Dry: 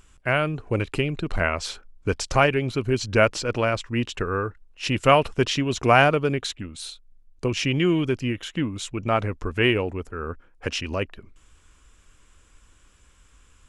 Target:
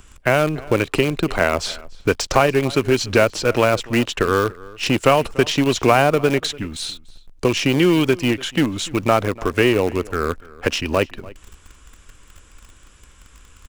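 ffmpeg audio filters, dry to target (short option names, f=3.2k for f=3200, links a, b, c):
-filter_complex "[0:a]acrossover=split=230|950|7500[a][b][c][d];[a]acompressor=threshold=-38dB:ratio=4[e];[b]acompressor=threshold=-25dB:ratio=4[f];[c]acompressor=threshold=-32dB:ratio=4[g];[d]acompressor=threshold=-50dB:ratio=4[h];[e][f][g][h]amix=inputs=4:normalize=0,asplit=2[i][j];[j]acrusher=bits=5:dc=4:mix=0:aa=0.000001,volume=-8.5dB[k];[i][k]amix=inputs=2:normalize=0,asplit=2[l][m];[m]adelay=291.5,volume=-21dB,highshelf=f=4k:g=-6.56[n];[l][n]amix=inputs=2:normalize=0,volume=8dB"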